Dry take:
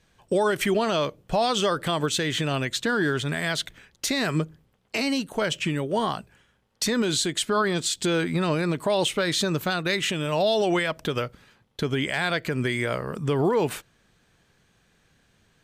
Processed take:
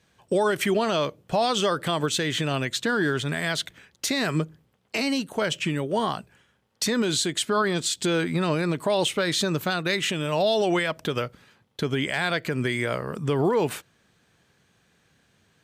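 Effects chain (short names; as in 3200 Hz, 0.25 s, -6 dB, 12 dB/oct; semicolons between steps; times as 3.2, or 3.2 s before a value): HPF 76 Hz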